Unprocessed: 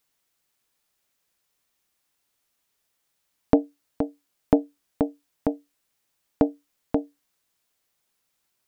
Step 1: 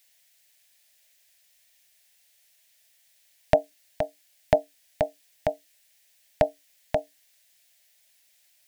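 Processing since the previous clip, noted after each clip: EQ curve 160 Hz 0 dB, 230 Hz -13 dB, 390 Hz -22 dB, 600 Hz +9 dB, 1200 Hz -7 dB, 1800 Hz +12 dB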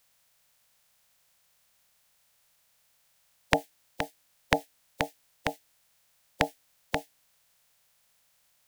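spectral limiter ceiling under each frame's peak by 26 dB; gain -4 dB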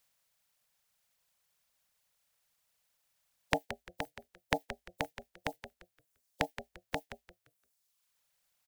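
frequency-shifting echo 0.173 s, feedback 35%, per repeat -53 Hz, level -9.5 dB; reverb removal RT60 1.2 s; gain -6.5 dB

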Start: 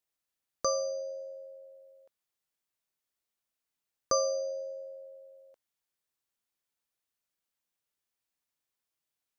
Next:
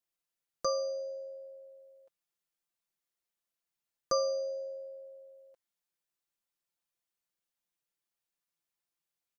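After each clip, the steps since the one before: comb 5.8 ms; gain -4.5 dB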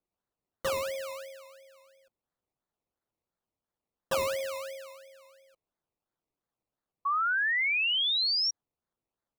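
dynamic EQ 430 Hz, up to +5 dB, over -45 dBFS, Q 0.81; decimation with a swept rate 22×, swing 60% 2.9 Hz; painted sound rise, 7.05–8.51, 1100–5700 Hz -24 dBFS; gain -3.5 dB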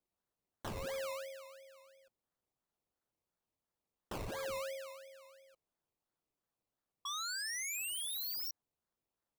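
wavefolder -34.5 dBFS; gain -2 dB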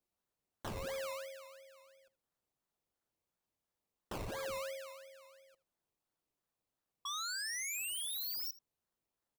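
echo 79 ms -19.5 dB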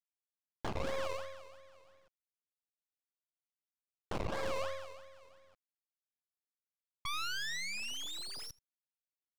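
G.711 law mismatch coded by A; air absorption 150 m; half-wave rectifier; gain +13.5 dB

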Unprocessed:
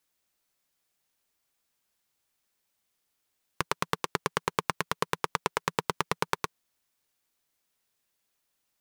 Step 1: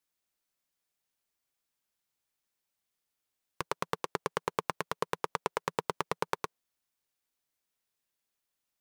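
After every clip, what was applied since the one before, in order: dynamic EQ 570 Hz, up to +7 dB, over -44 dBFS, Q 0.77; gain -7 dB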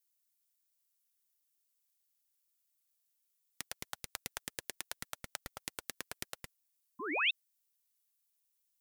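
painted sound rise, 6.99–7.31, 610–3300 Hz -23 dBFS; differentiator; ring modulator with a swept carrier 650 Hz, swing 50%, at 4.2 Hz; gain +5.5 dB

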